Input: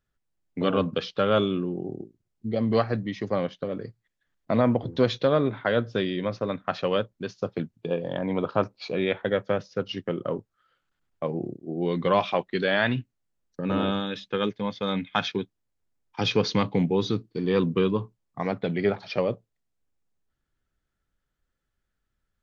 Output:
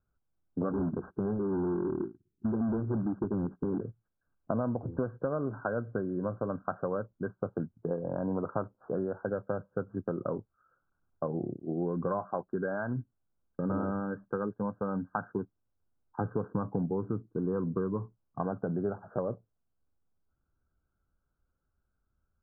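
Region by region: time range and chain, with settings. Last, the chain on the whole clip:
0.71–3.81 Chebyshev band-stop 380–3100 Hz, order 4 + overdrive pedal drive 25 dB, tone 3500 Hz, clips at -15.5 dBFS + short-mantissa float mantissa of 2-bit
whole clip: compressor, threshold -28 dBFS; Chebyshev low-pass 1600 Hz, order 10; bell 74 Hz +6 dB 1 oct

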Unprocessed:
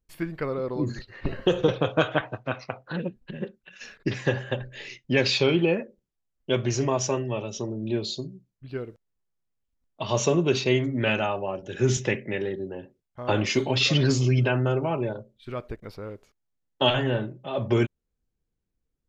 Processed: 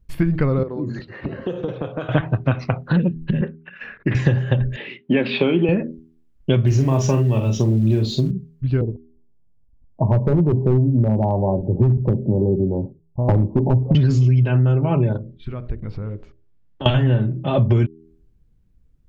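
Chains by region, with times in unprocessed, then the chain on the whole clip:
0.63–2.09 HPF 350 Hz + tilt -2.5 dB/oct + compressor 2.5:1, threshold -42 dBFS
3.41–4.15 LPF 2000 Hz 24 dB/oct + tilt +4 dB/oct
4.76–5.69 Chebyshev band-pass 210–3400 Hz, order 3 + air absorption 140 m + notches 50/100/150/200/250 Hz
6.67–8.31 companded quantiser 6-bit + doubler 45 ms -7 dB
8.81–13.95 steep low-pass 1000 Hz 96 dB/oct + hard clip -18.5 dBFS
15.17–16.86 compressor 2.5:1, threshold -46 dBFS + air absorption 120 m + notches 60/120/180/240/300/360/420/480/540/600 Hz
whole clip: tone controls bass +15 dB, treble -6 dB; de-hum 80.57 Hz, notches 5; compressor 6:1, threshold -23 dBFS; gain +9 dB

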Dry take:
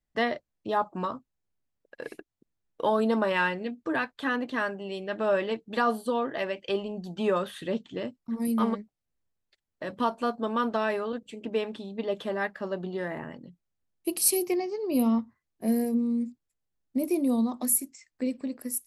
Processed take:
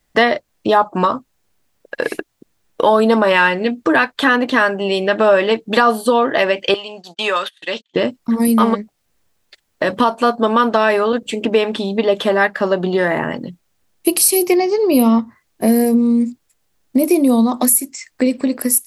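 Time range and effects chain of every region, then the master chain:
6.74–7.96 gate -39 dBFS, range -35 dB + band-pass 3900 Hz, Q 0.66
whole clip: low shelf 280 Hz -7 dB; compressor 2:1, threshold -38 dBFS; maximiser +23.5 dB; gain -1 dB

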